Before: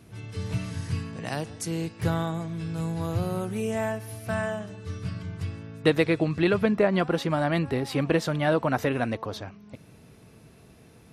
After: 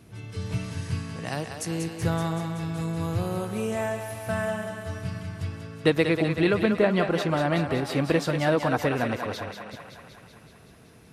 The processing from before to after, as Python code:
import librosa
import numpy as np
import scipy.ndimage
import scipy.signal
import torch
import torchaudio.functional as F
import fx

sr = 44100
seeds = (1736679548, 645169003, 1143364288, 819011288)

y = fx.echo_thinned(x, sr, ms=189, feedback_pct=70, hz=380.0, wet_db=-6.5)